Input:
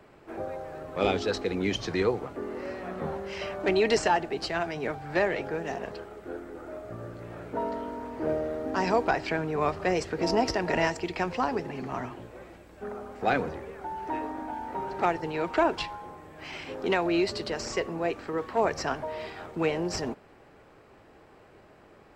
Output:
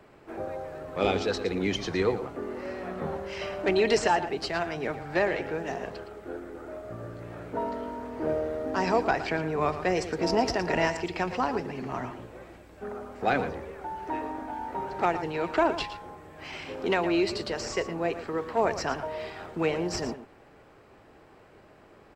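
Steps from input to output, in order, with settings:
single-tap delay 114 ms −12 dB

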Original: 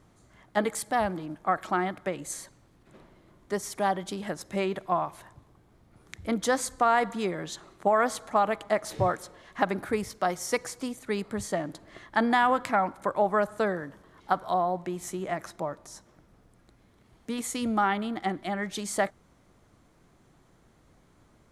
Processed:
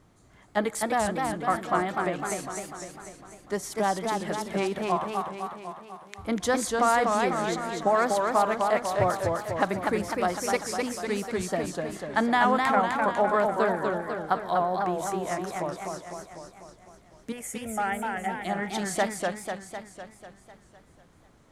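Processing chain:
0:04.96–0:06.18: high-pass filter 820 Hz
0:17.32–0:18.41: phaser with its sweep stopped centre 1,100 Hz, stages 6
feedback echo with a swinging delay time 250 ms, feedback 60%, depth 168 cents, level −3.5 dB

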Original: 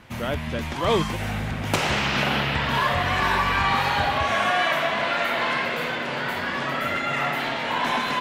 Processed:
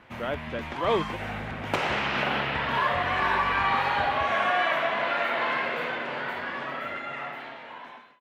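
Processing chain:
fade-out on the ending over 2.38 s
bass and treble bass −8 dB, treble −14 dB
level −2 dB

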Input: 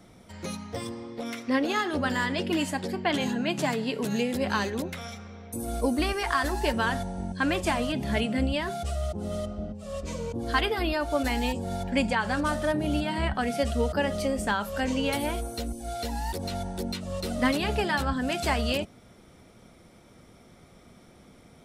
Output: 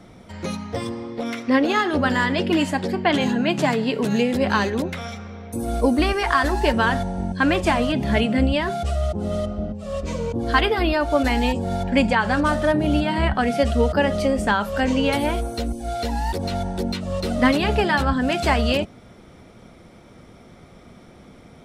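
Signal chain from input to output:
low-pass filter 3,900 Hz 6 dB per octave
level +7.5 dB

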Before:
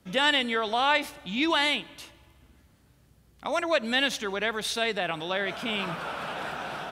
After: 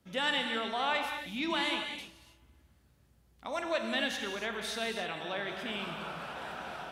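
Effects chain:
reverb whose tail is shaped and stops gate 320 ms flat, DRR 3.5 dB
level −8.5 dB

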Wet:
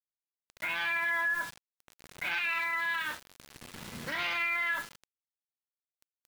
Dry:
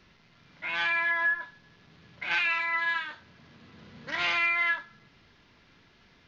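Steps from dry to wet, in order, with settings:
bit reduction 8 bits
brickwall limiter −29.5 dBFS, peak gain reduction 11.5 dB
level +5 dB

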